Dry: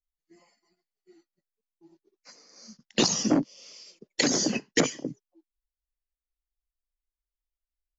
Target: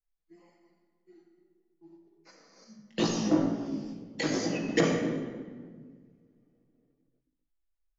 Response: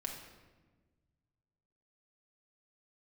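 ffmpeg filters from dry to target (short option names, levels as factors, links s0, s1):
-filter_complex "[1:a]atrim=start_sample=2205,asetrate=33075,aresample=44100[s0];[0:a][s0]afir=irnorm=-1:irlink=0,asettb=1/sr,asplit=3[s1][s2][s3];[s1]atrim=end=2.644[s4];[s2]atrim=start=2.64:end=4.69,asetpts=PTS-STARTPTS,afade=t=in:d=0.004:c=qsin,afade=t=out:st=2.046:d=0.004:c=qsin,flanger=delay=17:depth=2.5:speed=2.1[s5];[s3]atrim=start=4.686[s6];[s4][s5]acrossfade=d=0.004:c1=hsin:c2=qsin[s7];[s7][s6]acrossfade=d=0.004:c1=qsin:c2=hsin,lowpass=f=2000:p=1"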